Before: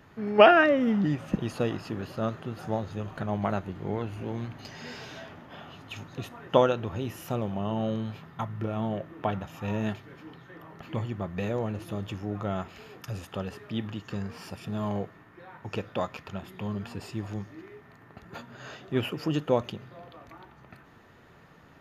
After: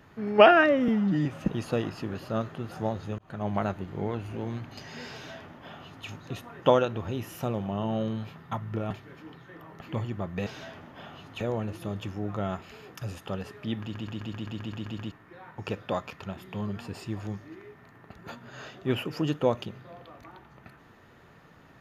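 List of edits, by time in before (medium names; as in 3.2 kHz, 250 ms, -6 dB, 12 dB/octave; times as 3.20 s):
0.88–1.13 s: stretch 1.5×
3.06–3.36 s: fade in
5.01–5.95 s: copy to 11.47 s
8.78–9.91 s: delete
13.88 s: stutter in place 0.13 s, 10 plays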